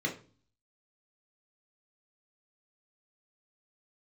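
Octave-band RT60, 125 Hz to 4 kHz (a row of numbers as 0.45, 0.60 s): 0.70, 0.60, 0.40, 0.35, 0.35, 0.35 s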